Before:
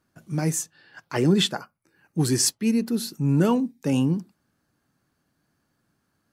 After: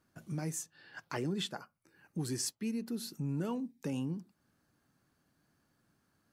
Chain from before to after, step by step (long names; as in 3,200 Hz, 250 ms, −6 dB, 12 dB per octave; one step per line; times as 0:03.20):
downward compressor 2.5 to 1, threshold −37 dBFS, peak gain reduction 14.5 dB
level −2.5 dB